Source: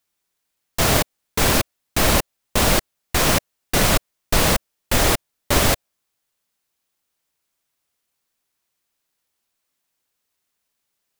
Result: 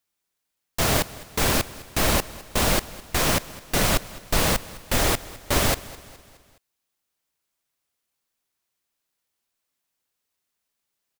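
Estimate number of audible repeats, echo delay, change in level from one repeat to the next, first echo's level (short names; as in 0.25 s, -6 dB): 3, 0.209 s, -6.0 dB, -19.0 dB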